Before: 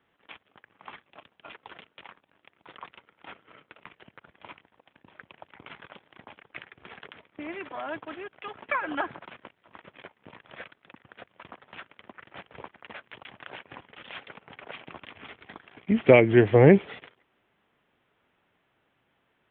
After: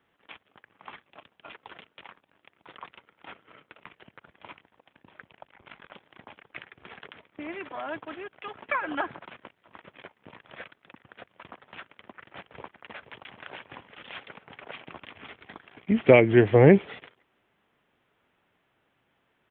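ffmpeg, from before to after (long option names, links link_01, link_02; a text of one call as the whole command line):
ffmpeg -i in.wav -filter_complex "[0:a]asettb=1/sr,asplit=3[link_01][link_02][link_03];[link_01]atrim=end=5.294[link_04];[link_02]atrim=start=5.29:end=5.91,asetpts=PTS-STARTPTS,afade=type=in:duration=0.004:curve=qsin,afade=type=out:start_time=0.616:duration=0.004:curve=qsin,aeval=exprs='val(0)*sin(2*PI*24*n/s)':channel_layout=same[link_05];[link_03]atrim=start=5.906[link_06];[link_04][link_05]acrossfade=duration=0.004:curve1=hsin:curve2=qsin[link_07];[link_07][link_06]acrossfade=duration=0.004:curve1=qsin:curve2=hsin,asplit=2[link_08][link_09];[link_09]afade=type=in:start_time=12.49:duration=0.01,afade=type=out:start_time=13.39:duration=0.01,aecho=0:1:480|960|1440|1920|2400:0.316228|0.158114|0.0790569|0.0395285|0.0197642[link_10];[link_08][link_10]amix=inputs=2:normalize=0" out.wav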